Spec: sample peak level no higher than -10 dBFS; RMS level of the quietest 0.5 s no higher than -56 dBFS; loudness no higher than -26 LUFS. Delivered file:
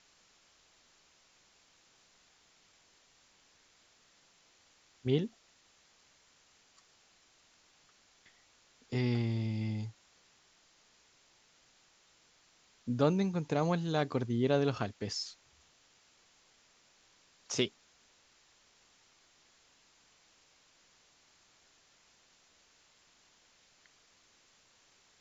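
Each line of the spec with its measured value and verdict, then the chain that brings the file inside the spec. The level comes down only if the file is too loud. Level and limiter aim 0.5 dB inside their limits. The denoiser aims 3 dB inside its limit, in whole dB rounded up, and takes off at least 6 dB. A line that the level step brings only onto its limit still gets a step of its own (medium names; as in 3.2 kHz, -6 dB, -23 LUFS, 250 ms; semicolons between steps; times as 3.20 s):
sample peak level -14.5 dBFS: pass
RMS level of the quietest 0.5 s -67 dBFS: pass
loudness -33.5 LUFS: pass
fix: none needed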